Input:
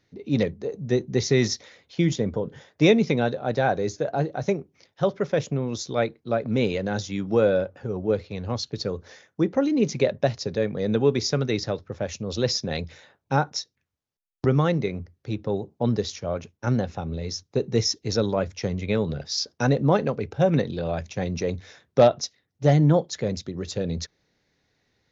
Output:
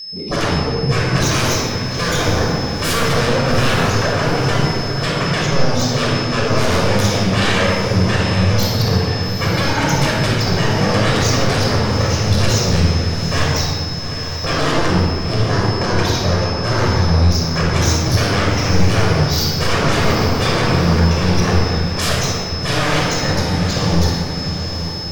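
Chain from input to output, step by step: touch-sensitive flanger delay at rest 5.2 ms, full sweep at -20.5 dBFS; 6.70–8.79 s: treble shelf 3.5 kHz +6 dB; whistle 5.2 kHz -44 dBFS; sine folder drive 13 dB, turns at -15.5 dBFS; echo that smears into a reverb 820 ms, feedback 47%, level -9 dB; simulated room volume 3300 m³, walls mixed, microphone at 5.8 m; trim -6.5 dB

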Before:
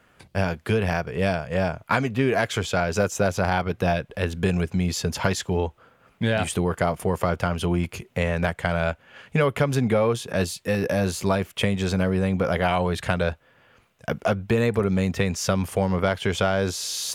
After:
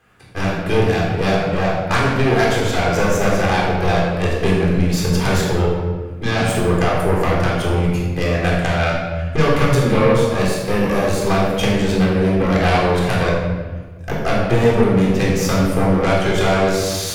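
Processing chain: Chebyshev shaper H 6 -18 dB, 8 -12 dB, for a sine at -4.5 dBFS; simulated room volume 1200 m³, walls mixed, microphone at 3.8 m; trim -2.5 dB

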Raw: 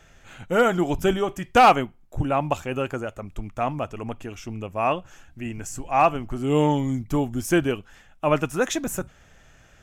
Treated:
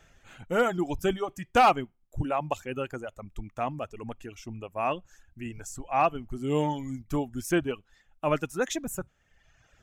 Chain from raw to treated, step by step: reverb removal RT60 1.1 s; trim -5 dB

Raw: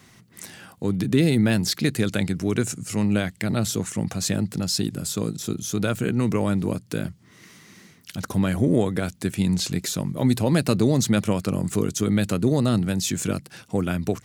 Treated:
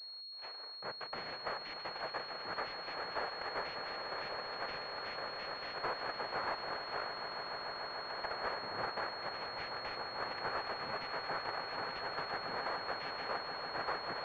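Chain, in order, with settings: gate -40 dBFS, range -11 dB; high-pass 980 Hz 24 dB/octave; compression, threshold -32 dBFS, peak gain reduction 11 dB; noise-vocoded speech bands 3; saturation -33.5 dBFS, distortion -11 dB; distance through air 250 m; on a send: echo with a slow build-up 147 ms, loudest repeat 8, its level -12 dB; on the sum: class-D stage that switches slowly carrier 4.3 kHz; trim +5.5 dB

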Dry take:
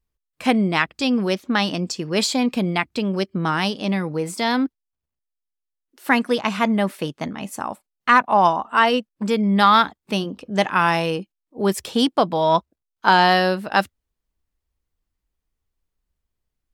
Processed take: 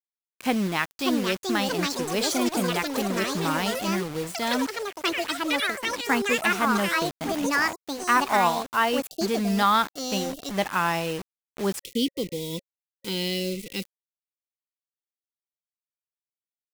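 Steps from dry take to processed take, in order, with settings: bit crusher 5-bit; time-frequency box 11.84–13.83 s, 550–1900 Hz -27 dB; ever faster or slower copies 731 ms, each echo +6 st, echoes 3; trim -6.5 dB

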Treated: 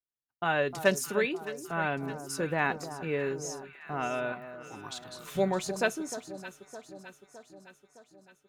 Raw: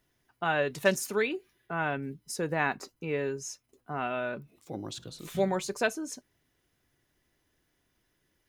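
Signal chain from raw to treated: 4.32–5.36 s: resonant low shelf 780 Hz -8.5 dB, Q 3; expander -50 dBFS; echo whose repeats swap between lows and highs 306 ms, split 1.2 kHz, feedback 74%, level -11 dB

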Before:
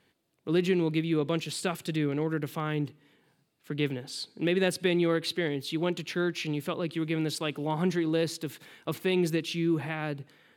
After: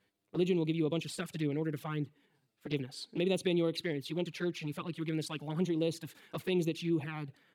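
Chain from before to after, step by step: tempo 1.4×; touch-sensitive flanger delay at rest 10.2 ms, full sweep at -24 dBFS; trim -3.5 dB

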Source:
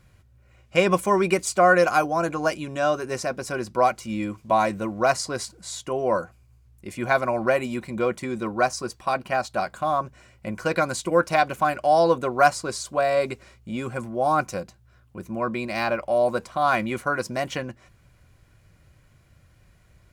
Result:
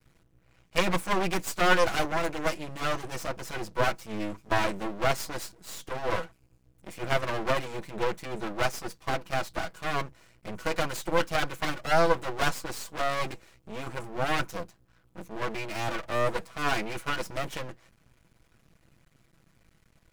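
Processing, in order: comb filter that takes the minimum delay 6.1 ms; half-wave rectifier

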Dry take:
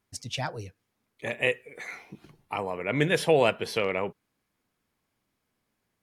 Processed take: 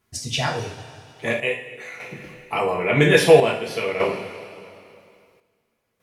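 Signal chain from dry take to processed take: two-slope reverb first 0.43 s, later 2.6 s, from -16 dB, DRR -3.5 dB; square tremolo 0.5 Hz, depth 60%, duty 70%; trim +4.5 dB

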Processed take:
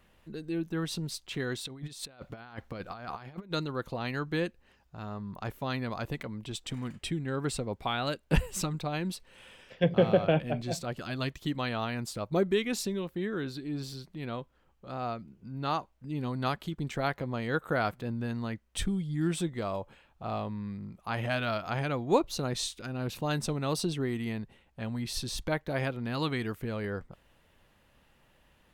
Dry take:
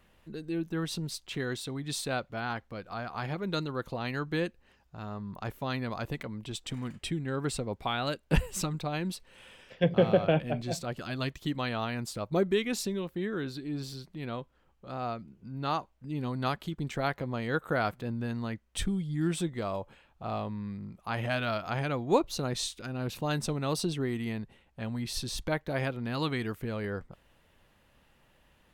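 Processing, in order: 1.65–3.52 s: compressor with a negative ratio -41 dBFS, ratio -0.5

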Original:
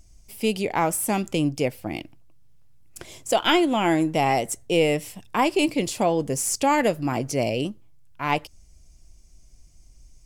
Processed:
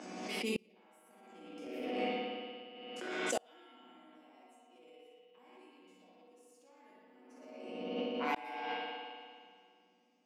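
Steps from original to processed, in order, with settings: spectral sustain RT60 0.46 s; level-controlled noise filter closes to 2.3 kHz, open at -20.5 dBFS; in parallel at -4.5 dB: saturation -16.5 dBFS, distortion -13 dB; on the sum: steep high-pass 200 Hz 72 dB/octave; peaking EQ 260 Hz +3.5 dB 1.2 oct; chord resonator B2 major, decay 0.35 s; bucket-brigade echo 114 ms, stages 4096, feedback 50%, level -4 dB; spring tank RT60 2 s, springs 59 ms, chirp 65 ms, DRR -5 dB; inverted gate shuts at -20 dBFS, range -34 dB; swell ahead of each attack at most 32 dB/s; trim -2 dB

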